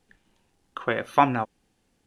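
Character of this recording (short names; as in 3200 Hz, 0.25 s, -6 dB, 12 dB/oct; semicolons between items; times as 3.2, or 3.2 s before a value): noise floor -71 dBFS; spectral tilt -4.5 dB/oct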